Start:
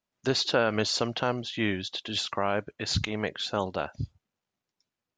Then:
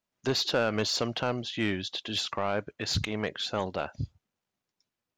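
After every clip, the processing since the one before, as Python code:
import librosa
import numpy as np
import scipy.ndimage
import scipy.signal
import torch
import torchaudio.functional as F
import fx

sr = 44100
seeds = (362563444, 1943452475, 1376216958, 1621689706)

y = 10.0 ** (-18.0 / 20.0) * np.tanh(x / 10.0 ** (-18.0 / 20.0))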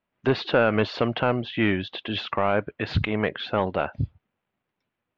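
y = scipy.signal.sosfilt(scipy.signal.butter(4, 2900.0, 'lowpass', fs=sr, output='sos'), x)
y = y * librosa.db_to_amplitude(7.0)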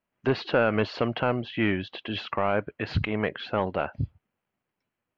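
y = fx.notch(x, sr, hz=3600.0, q=10.0)
y = y * librosa.db_to_amplitude(-2.5)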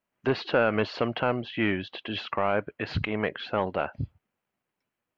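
y = fx.low_shelf(x, sr, hz=180.0, db=-4.5)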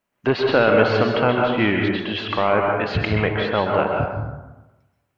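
y = fx.rev_plate(x, sr, seeds[0], rt60_s=1.1, hf_ratio=0.45, predelay_ms=115, drr_db=0.5)
y = y * librosa.db_to_amplitude(6.0)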